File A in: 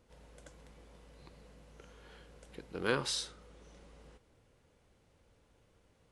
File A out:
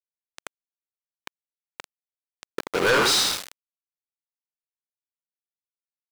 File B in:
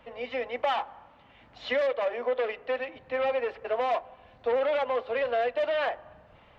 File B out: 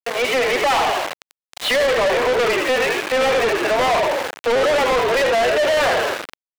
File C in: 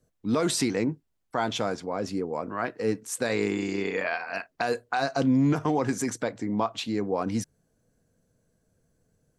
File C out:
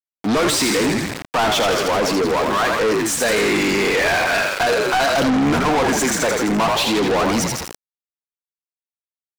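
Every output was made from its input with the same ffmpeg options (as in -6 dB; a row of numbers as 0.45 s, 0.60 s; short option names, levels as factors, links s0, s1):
-filter_complex "[0:a]asplit=8[s0][s1][s2][s3][s4][s5][s6][s7];[s1]adelay=82,afreqshift=-51,volume=0.422[s8];[s2]adelay=164,afreqshift=-102,volume=0.245[s9];[s3]adelay=246,afreqshift=-153,volume=0.141[s10];[s4]adelay=328,afreqshift=-204,volume=0.0822[s11];[s5]adelay=410,afreqshift=-255,volume=0.0479[s12];[s6]adelay=492,afreqshift=-306,volume=0.0275[s13];[s7]adelay=574,afreqshift=-357,volume=0.016[s14];[s0][s8][s9][s10][s11][s12][s13][s14]amix=inputs=8:normalize=0,aeval=exprs='val(0)*gte(abs(val(0)),0.00794)':c=same,asplit=2[s15][s16];[s16]highpass=f=720:p=1,volume=39.8,asoftclip=type=tanh:threshold=0.299[s17];[s15][s17]amix=inputs=2:normalize=0,lowpass=f=6000:p=1,volume=0.501"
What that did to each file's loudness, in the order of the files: +15.5 LU, +11.5 LU, +10.5 LU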